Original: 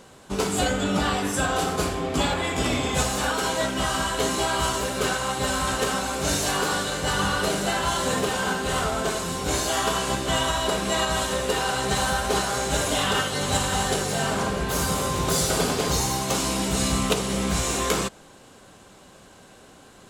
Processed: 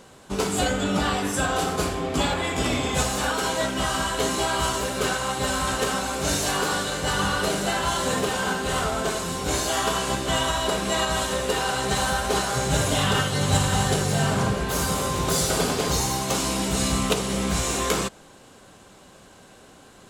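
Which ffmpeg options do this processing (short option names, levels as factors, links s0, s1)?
-filter_complex "[0:a]asettb=1/sr,asplit=3[s0][s1][s2];[s0]atrim=end=12.554[s3];[s1]atrim=start=12.55:end=14.54,asetpts=PTS-STARTPTS,afade=t=in:d=0.004:c=qsin,afade=t=out:st=1.986:d=0.004:c=qsin,equalizer=f=120:w=1.5:g=11.5[s4];[s2]atrim=start=14.536[s5];[s3][s4]acrossfade=d=0.004:c1=hsin:c2=qsin[s6];[s6][s5]acrossfade=d=0.004:c1=qsin:c2=hsin"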